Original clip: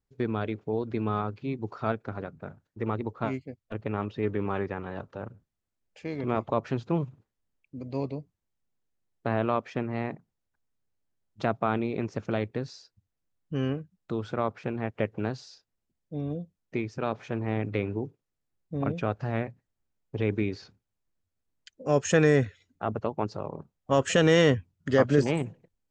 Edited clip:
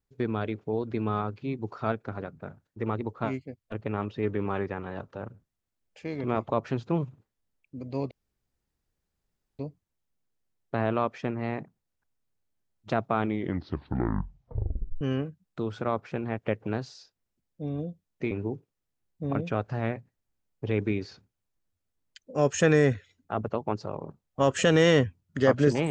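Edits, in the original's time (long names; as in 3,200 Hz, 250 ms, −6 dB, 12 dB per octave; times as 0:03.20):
0:08.11: splice in room tone 1.48 s
0:11.70: tape stop 1.83 s
0:16.83–0:17.82: remove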